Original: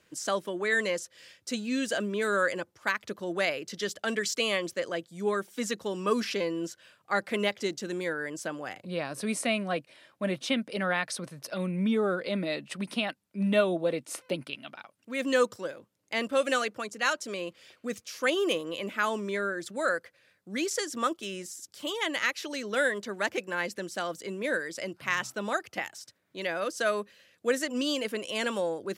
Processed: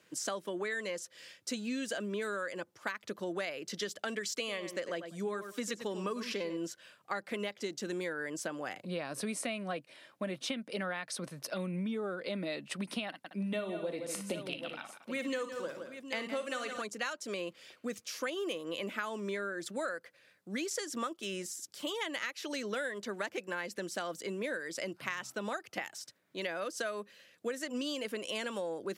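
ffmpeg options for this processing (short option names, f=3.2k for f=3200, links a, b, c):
-filter_complex "[0:a]asettb=1/sr,asplit=3[a][b][c];[a]atrim=end=4.344[d];[b]atrim=start=4.34:end=6.57,asetpts=PTS-STARTPTS,afade=t=in:d=0.004:c=qsin,afade=t=out:st=2.226:d=0.004:c=qsin,asplit=2[e][f];[f]adelay=97,lowpass=f=3.7k:p=1,volume=-11dB,asplit=2[g][h];[h]adelay=97,lowpass=f=3.7k:p=1,volume=0.15[i];[e][g][i]amix=inputs=3:normalize=0,atrim=end_sample=98343[j];[c]atrim=start=6.566[k];[d][j]acrossfade=d=0.004:c1=hsin:c2=qsin[l];[l][k]acrossfade=d=0.004:c1=qsin:c2=hsin,asettb=1/sr,asplit=3[m][n][o];[m]atrim=end=13.084[p];[n]atrim=start=13.08:end=16.82,asetpts=PTS-STARTPTS,afade=t=in:d=0.004:c=qsin,afade=t=out:st=3.736:d=0.004:c=qsin,aecho=1:1:41|57|58|163|228|780:0.126|0.15|0.282|0.282|0.119|0.15,atrim=end_sample=164934[q];[o]atrim=start=16.816[r];[p][q]acrossfade=d=0.004:c1=hsin:c2=qsin[s];[s][r]acrossfade=d=0.004:c1=qsin:c2=hsin,highpass=130,acompressor=threshold=-33dB:ratio=10"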